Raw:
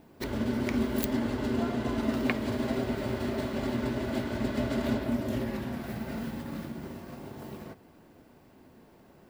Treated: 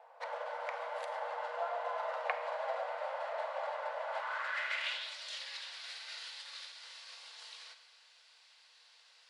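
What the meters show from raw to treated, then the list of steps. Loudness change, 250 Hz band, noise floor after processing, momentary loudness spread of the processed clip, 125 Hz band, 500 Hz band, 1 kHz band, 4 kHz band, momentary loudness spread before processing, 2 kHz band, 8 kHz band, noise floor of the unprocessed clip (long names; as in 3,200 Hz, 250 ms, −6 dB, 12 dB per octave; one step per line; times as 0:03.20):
−8.0 dB, below −40 dB, −64 dBFS, 13 LU, below −40 dB, −6.5 dB, +2.0 dB, +1.0 dB, 13 LU, 0.0 dB, −7.0 dB, −57 dBFS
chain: parametric band 600 Hz −10.5 dB 0.98 octaves
four-comb reverb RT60 0.95 s, combs from 33 ms, DRR 9.5 dB
in parallel at −2.5 dB: downward compressor, threshold −43 dBFS, peak gain reduction 18 dB
on the sum: brick-wall band-pass 460–11,000 Hz
band-pass filter sweep 720 Hz → 4,200 Hz, 0:04.05–0:05.14
level +9.5 dB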